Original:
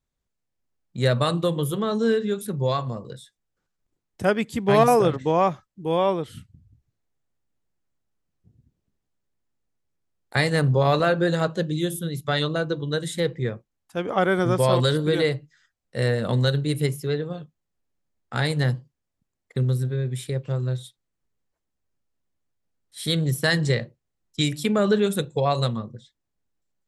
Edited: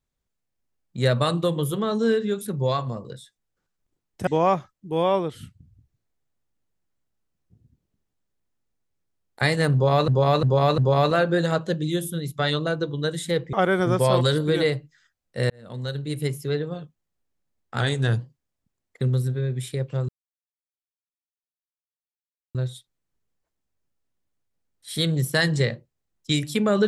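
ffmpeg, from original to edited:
ffmpeg -i in.wav -filter_complex "[0:a]asplit=10[link_01][link_02][link_03][link_04][link_05][link_06][link_07][link_08][link_09][link_10];[link_01]atrim=end=4.272[link_11];[link_02]atrim=start=5.208:end=11.022[link_12];[link_03]atrim=start=10.668:end=11.022[link_13];[link_04]atrim=start=10.668:end=11.022[link_14];[link_05]atrim=start=10.668:end=13.422[link_15];[link_06]atrim=start=14.118:end=16.09,asetpts=PTS-STARTPTS,afade=type=out:start_time=1.968:duration=0.004:curve=hsin[link_16];[link_07]atrim=start=16.09:end=18.394,asetpts=PTS-STARTPTS,afade=type=in:duration=1.04[link_17];[link_08]atrim=start=18.39:end=18.76,asetpts=PTS-STARTPTS,asetrate=40131,aresample=44100[link_18];[link_09]atrim=start=18.756:end=20.64,asetpts=PTS-STARTPTS,afade=type=out:start_time=1.88:duration=0.004:curve=hsin,apad=pad_dur=2.46[link_19];[link_10]atrim=start=20.64,asetpts=PTS-STARTPTS,afade=type=in:duration=0.004:curve=hsin[link_20];[link_11][link_12]acrossfade=duration=0.004:curve1=hsin:curve2=hsin[link_21];[link_21][link_13]acrossfade=duration=0.004:curve1=hsin:curve2=hsin[link_22];[link_22][link_14]acrossfade=duration=0.004:curve1=hsin:curve2=hsin[link_23];[link_23][link_15]acrossfade=duration=0.004:curve1=hsin:curve2=hsin[link_24];[link_16][link_17]concat=n=2:v=0:a=1[link_25];[link_24][link_25]acrossfade=duration=0.004:curve1=hsin:curve2=hsin[link_26];[link_26][link_18]acrossfade=duration=0.004:curve1=hsin:curve2=hsin[link_27];[link_19][link_20]concat=n=2:v=0:a=1[link_28];[link_27][link_28]acrossfade=duration=0.004:curve1=hsin:curve2=hsin" out.wav

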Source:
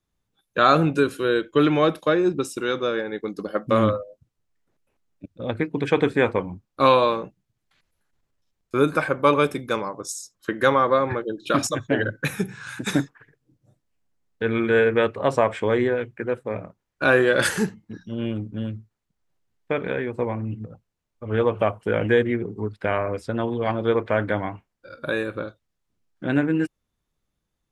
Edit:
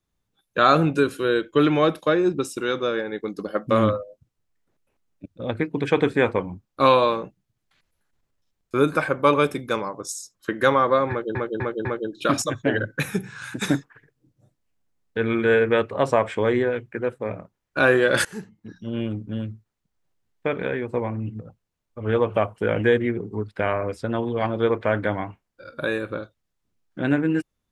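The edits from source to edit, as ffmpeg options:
ffmpeg -i in.wav -filter_complex "[0:a]asplit=5[link_01][link_02][link_03][link_04][link_05];[link_01]atrim=end=11.352[link_06];[link_02]atrim=start=11.098:end=11.352[link_07];[link_03]atrim=start=11.098:end=11.352[link_08];[link_04]atrim=start=11.098:end=17.5,asetpts=PTS-STARTPTS,afade=type=out:start_time=6.398:duration=0.004:curve=hsin:silence=0.0841395[link_09];[link_05]atrim=start=17.5,asetpts=PTS-STARTPTS,afade=type=in:duration=0.63:silence=0.0841395[link_10];[link_06][link_07]acrossfade=duration=0.004:curve1=hsin:curve2=hsin[link_11];[link_11][link_08]acrossfade=duration=0.004:curve1=hsin:curve2=hsin[link_12];[link_09][link_10]concat=n=2:v=0:a=1[link_13];[link_12][link_13]acrossfade=duration=0.004:curve1=hsin:curve2=hsin" out.wav

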